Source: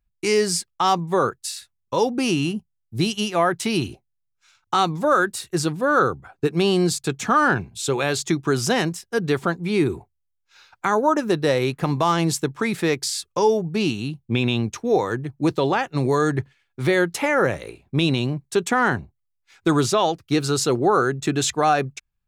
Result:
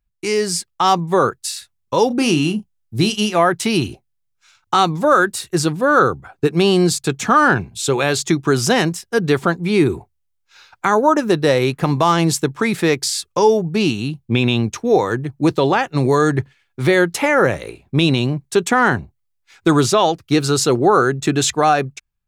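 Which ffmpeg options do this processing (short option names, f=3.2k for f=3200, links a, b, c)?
-filter_complex "[0:a]asettb=1/sr,asplit=3[a][b][c];[a]atrim=end=2.074[d];[b]atrim=start=2.07:end=3.38,asetpts=PTS-STARTPTS,afade=t=in:d=0.004:c=qsin,afade=t=out:st=1.306:d=0.004:c=qsin,asplit=2[e][f];[f]adelay=33,volume=-10.5dB[g];[e][g]amix=inputs=2:normalize=0,atrim=end_sample=57771[h];[c]atrim=start=3.376[i];[d][h]acrossfade=d=0.004:c1=hsin:c2=qsin[j];[j][i]acrossfade=d=0.004:c1=qsin:c2=hsin,dynaudnorm=f=180:g=7:m=6.5dB"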